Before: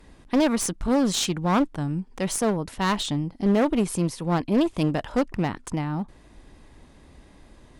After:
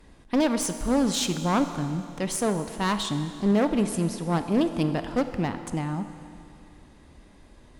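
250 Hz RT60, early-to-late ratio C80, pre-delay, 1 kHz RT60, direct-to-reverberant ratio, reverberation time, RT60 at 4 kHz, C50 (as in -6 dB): 2.5 s, 10.5 dB, 24 ms, 2.5 s, 9.0 dB, 2.5 s, 2.5 s, 9.5 dB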